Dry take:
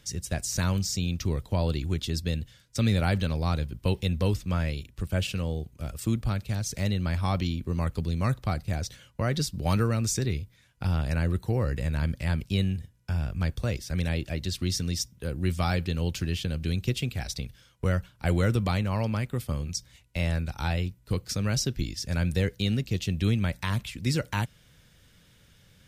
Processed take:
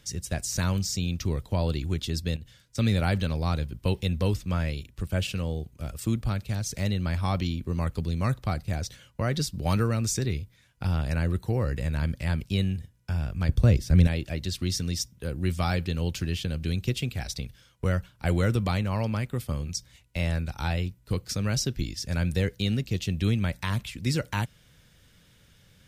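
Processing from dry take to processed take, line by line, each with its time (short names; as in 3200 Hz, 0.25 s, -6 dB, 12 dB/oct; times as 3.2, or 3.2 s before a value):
2.36–2.78 compressor, threshold -37 dBFS
13.49–14.07 low shelf 410 Hz +11.5 dB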